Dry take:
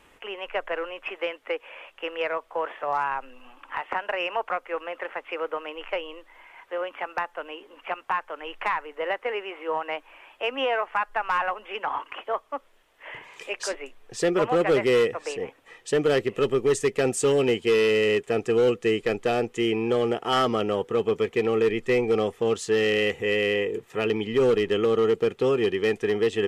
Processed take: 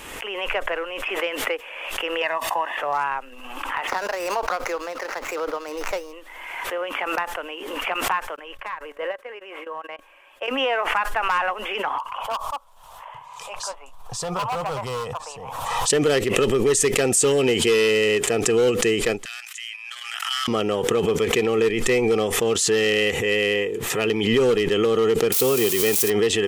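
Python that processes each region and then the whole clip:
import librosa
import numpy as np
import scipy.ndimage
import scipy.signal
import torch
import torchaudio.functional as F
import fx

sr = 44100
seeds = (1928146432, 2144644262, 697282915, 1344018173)

y = fx.chain(x, sr, fx.highpass(hz=180.0, slope=6),
    fx.comb(ms=1.1, depth=0.76), at=(2.22, 2.77))
y = fx.chain(y, sr, fx.median_filter(points=15),
    fx.high_shelf(hz=6400.0, db=-6.0), at=(3.87, 6.13))
y = fx.chain(y, sr, fx.level_steps(step_db=16),
    fx.small_body(hz=(560.0, 1100.0, 1600.0), ring_ms=60, db=10),
    fx.upward_expand(threshold_db=-48.0, expansion=2.5), at=(8.36, 10.48))
y = fx.chain(y, sr, fx.curve_eq(hz=(140.0, 350.0, 550.0, 1000.0, 1900.0, 3700.0), db=(0, -23, -7, 8, -18, -8)),
    fx.clip_hard(threshold_db=-24.5), at=(11.98, 15.9))
y = fx.chain(y, sr, fx.cheby2_highpass(hz=440.0, order=4, stop_db=60),
    fx.level_steps(step_db=10), at=(19.25, 20.48))
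y = fx.chain(y, sr, fx.crossing_spikes(level_db=-22.0),
    fx.peak_eq(hz=1700.0, db=-6.5, octaves=0.23), at=(25.32, 26.1))
y = fx.high_shelf(y, sr, hz=4000.0, db=10.0)
y = fx.pre_swell(y, sr, db_per_s=36.0)
y = y * 10.0 ** (1.5 / 20.0)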